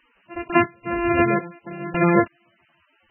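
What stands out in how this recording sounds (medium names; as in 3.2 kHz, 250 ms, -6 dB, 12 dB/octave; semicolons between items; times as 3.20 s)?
a buzz of ramps at a fixed pitch in blocks of 128 samples; random-step tremolo 3.6 Hz, depth 90%; a quantiser's noise floor 10-bit, dither triangular; MP3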